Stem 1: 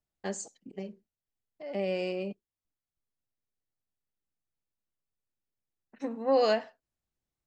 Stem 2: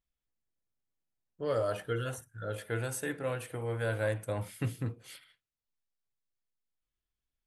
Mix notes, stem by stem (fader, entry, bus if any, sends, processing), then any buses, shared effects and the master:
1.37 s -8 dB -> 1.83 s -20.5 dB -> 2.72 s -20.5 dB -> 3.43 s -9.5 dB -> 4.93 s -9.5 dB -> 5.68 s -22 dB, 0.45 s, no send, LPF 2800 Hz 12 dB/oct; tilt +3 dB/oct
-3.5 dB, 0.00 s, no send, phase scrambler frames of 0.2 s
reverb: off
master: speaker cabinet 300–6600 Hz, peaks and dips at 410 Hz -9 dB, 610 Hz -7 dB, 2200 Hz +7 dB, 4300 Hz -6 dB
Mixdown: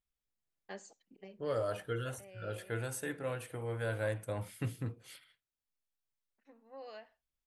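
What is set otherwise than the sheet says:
stem 2: missing phase scrambler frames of 0.2 s; master: missing speaker cabinet 300–6600 Hz, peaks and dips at 410 Hz -9 dB, 610 Hz -7 dB, 2200 Hz +7 dB, 4300 Hz -6 dB

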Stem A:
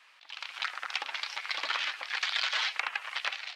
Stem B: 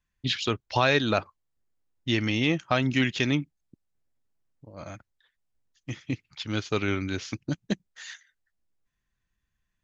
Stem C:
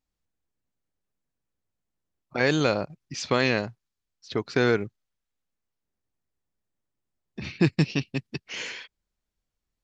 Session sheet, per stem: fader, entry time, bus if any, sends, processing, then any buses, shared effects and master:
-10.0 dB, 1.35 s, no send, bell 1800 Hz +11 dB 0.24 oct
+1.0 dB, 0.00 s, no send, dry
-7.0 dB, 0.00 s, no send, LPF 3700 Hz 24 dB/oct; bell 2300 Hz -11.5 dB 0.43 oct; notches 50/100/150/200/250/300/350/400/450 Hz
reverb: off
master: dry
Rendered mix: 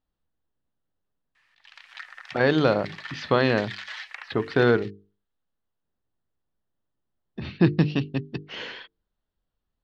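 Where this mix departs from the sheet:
stem B: muted; stem C -7.0 dB -> +3.5 dB

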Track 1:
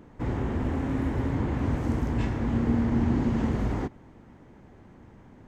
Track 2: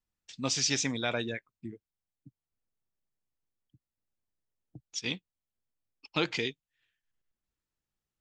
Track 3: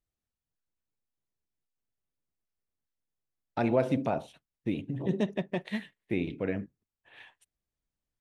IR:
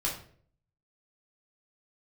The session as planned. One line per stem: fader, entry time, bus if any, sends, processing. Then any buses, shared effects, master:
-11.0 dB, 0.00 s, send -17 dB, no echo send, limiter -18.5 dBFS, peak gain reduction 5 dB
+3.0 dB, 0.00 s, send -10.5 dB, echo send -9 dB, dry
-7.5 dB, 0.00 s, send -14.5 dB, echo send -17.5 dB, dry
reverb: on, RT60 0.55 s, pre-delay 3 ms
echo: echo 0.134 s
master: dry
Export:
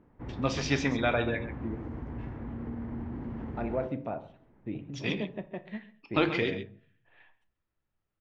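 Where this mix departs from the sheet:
stem 1: send off; master: extra LPF 2200 Hz 12 dB/oct

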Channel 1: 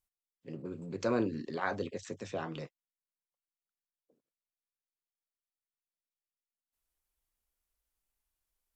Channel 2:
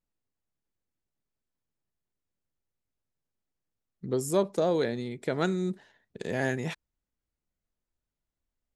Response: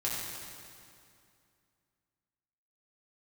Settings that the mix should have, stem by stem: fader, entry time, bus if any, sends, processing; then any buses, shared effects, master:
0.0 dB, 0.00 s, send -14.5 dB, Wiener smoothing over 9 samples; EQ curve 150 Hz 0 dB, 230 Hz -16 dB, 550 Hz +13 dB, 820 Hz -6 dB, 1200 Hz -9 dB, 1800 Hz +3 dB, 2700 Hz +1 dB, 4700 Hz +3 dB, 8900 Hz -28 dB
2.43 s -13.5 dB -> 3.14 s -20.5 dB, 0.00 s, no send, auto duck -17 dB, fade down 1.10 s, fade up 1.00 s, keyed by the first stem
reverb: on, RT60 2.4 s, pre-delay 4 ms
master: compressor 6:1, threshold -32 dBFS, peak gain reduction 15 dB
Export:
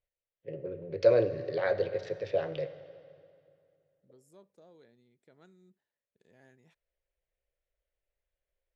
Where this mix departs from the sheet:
stem 2 -13.5 dB -> -25.0 dB; master: missing compressor 6:1, threshold -32 dBFS, peak gain reduction 15 dB

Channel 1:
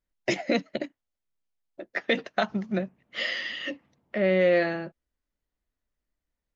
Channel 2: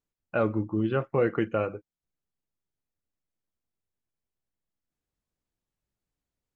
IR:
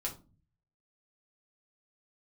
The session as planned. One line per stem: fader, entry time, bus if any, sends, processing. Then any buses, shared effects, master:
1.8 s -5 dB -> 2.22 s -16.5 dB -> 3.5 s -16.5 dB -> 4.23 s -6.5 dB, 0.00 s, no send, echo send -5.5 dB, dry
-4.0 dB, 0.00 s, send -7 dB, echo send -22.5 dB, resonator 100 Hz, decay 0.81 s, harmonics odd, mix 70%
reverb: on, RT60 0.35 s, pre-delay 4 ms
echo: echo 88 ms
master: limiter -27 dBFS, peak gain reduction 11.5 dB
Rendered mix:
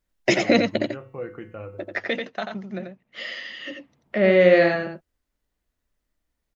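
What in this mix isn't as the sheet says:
stem 1 -5.0 dB -> +7.0 dB; master: missing limiter -27 dBFS, peak gain reduction 11.5 dB

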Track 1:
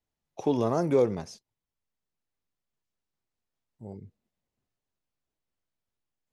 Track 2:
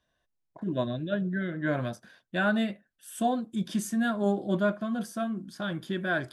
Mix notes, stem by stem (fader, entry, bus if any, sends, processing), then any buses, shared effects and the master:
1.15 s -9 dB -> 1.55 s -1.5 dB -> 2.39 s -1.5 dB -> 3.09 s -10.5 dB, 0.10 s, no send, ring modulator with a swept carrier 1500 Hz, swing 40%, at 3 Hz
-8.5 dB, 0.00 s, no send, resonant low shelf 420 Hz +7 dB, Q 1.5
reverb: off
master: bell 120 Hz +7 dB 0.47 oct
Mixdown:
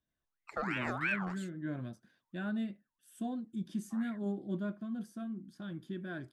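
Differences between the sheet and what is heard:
stem 2 -8.5 dB -> -16.0 dB; master: missing bell 120 Hz +7 dB 0.47 oct

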